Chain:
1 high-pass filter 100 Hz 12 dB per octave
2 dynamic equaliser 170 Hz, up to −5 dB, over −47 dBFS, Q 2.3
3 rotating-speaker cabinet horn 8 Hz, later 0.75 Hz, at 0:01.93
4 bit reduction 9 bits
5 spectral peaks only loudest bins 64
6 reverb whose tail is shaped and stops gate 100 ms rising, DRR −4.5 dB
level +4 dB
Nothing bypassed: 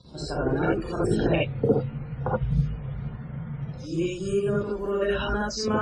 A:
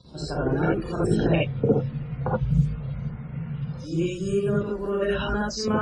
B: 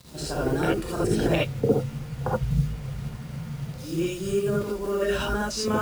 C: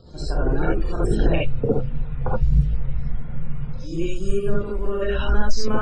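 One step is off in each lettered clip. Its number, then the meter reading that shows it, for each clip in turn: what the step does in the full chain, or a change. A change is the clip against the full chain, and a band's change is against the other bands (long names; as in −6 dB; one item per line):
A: 2, change in integrated loudness +1.5 LU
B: 5, 4 kHz band +2.0 dB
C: 1, 125 Hz band +3.0 dB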